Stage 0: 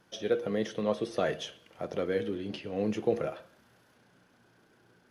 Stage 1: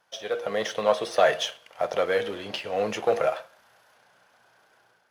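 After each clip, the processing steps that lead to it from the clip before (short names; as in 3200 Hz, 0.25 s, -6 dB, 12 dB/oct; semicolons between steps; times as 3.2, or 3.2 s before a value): sample leveller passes 1; resonant low shelf 450 Hz -13 dB, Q 1.5; AGC gain up to 7 dB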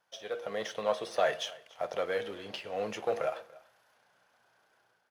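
echo 0.287 s -22 dB; gain -8 dB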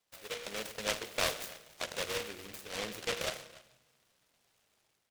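air absorption 95 m; on a send at -11 dB: reverb RT60 1.1 s, pre-delay 3 ms; on the sum: noise-modulated delay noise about 2300 Hz, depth 0.29 ms; gain -4.5 dB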